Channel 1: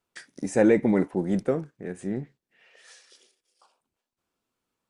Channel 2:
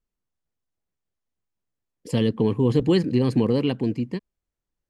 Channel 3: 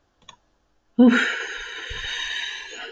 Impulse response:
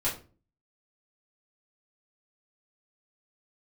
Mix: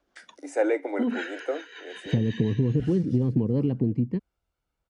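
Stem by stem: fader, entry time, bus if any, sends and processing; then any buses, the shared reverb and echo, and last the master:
−2.0 dB, 0.00 s, no bus, no send, Chebyshev high-pass filter 280 Hz, order 8; comb filter 1.4 ms, depth 44%
−4.5 dB, 0.00 s, bus A, no send, spectral tilt −4 dB per octave
+1.5 dB, 0.00 s, bus A, no send, Butterworth high-pass 190 Hz; speech leveller within 3 dB 0.5 s; automatic ducking −12 dB, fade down 1.40 s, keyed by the first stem
bus A: 0.0 dB, rotating-speaker cabinet horn 5.5 Hz; downward compressor 10 to 1, threshold −19 dBFS, peak gain reduction 8.5 dB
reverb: not used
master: high-pass filter 58 Hz; high-shelf EQ 4,900 Hz −7.5 dB

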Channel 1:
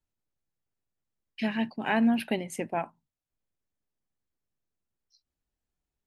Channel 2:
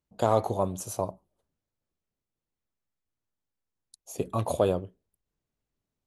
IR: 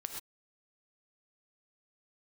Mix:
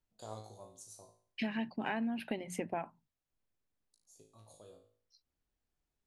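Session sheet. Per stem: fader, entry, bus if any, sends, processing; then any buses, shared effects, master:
+0.5 dB, 0.00 s, no send, high-shelf EQ 6,300 Hz −7.5 dB; mains-hum notches 60/120/180 Hz
−14.0 dB, 0.00 s, no send, flat-topped bell 6,100 Hz +14 dB; tuned comb filter 54 Hz, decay 0.49 s, harmonics all, mix 90%; automatic ducking −10 dB, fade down 1.90 s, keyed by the first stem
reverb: not used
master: downward compressor 8 to 1, threshold −33 dBFS, peak gain reduction 14 dB

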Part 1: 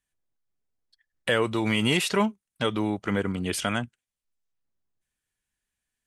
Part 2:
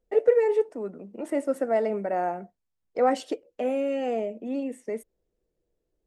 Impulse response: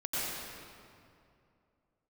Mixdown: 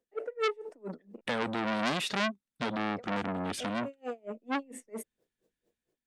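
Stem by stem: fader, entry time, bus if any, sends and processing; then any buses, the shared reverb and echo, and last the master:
−12.5 dB, 0.00 s, no send, high-shelf EQ 8,300 Hz −10.5 dB; hollow resonant body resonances 240/3,600 Hz, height 11 dB, ringing for 30 ms
0.0 dB, 0.00 s, muted 0:01.21–0:02.75, no send, high-pass filter 140 Hz 24 dB per octave; tremolo with a sine in dB 4.4 Hz, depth 36 dB; automatic ducking −17 dB, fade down 0.20 s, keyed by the first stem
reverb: not used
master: automatic gain control gain up to 7.5 dB; saturating transformer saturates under 2,500 Hz

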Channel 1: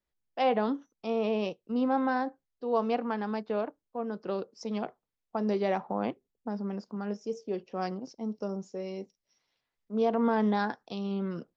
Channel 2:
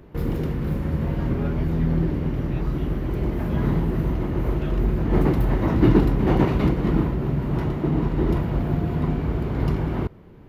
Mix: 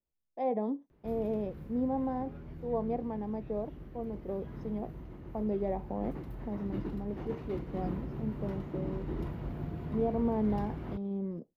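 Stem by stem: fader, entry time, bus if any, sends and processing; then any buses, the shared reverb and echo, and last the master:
−2.5 dB, 0.00 s, no send, moving average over 31 samples
0:07.36 −15 dB → 0:07.99 −8 dB, 0.90 s, no send, automatic ducking −7 dB, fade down 1.85 s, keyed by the first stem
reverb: not used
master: no processing

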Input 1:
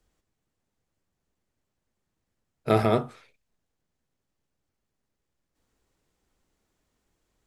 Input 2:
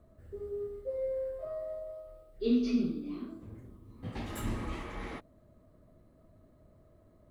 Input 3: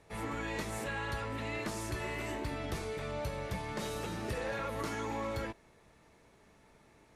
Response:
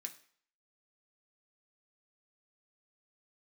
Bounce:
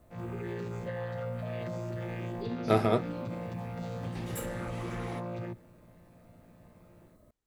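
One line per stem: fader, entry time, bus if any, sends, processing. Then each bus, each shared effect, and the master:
−2.5 dB, 0.00 s, no send, expander for the loud parts 1.5 to 1, over −41 dBFS
+0.5 dB, 0.00 s, send −5.5 dB, downward compressor 5 to 1, threshold −41 dBFS, peak gain reduction 16 dB; high-shelf EQ 6,500 Hz +10 dB
0.0 dB, 0.00 s, no send, channel vocoder with a chord as carrier bare fifth, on A#2; automatic gain control gain up to 6 dB; brickwall limiter −30.5 dBFS, peak gain reduction 10 dB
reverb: on, RT60 0.55 s, pre-delay 3 ms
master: no processing

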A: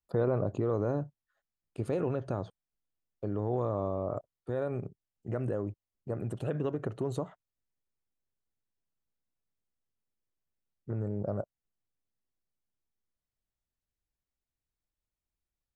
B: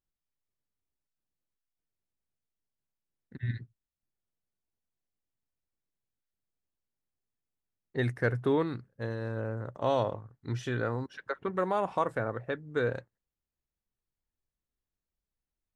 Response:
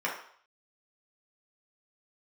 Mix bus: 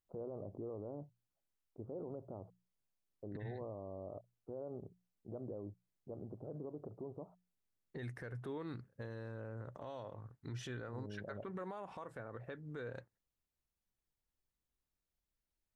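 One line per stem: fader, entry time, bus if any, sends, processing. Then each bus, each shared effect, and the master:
−9.5 dB, 0.00 s, no send, inverse Chebyshev low-pass filter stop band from 1,900 Hz, stop band 40 dB; parametric band 130 Hz −6 dB 0.42 octaves; mains-hum notches 60/120/180 Hz
−1.5 dB, 0.00 s, no send, downward compressor, threshold −34 dBFS, peak gain reduction 11.5 dB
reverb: not used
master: brickwall limiter −36.5 dBFS, peak gain reduction 12.5 dB

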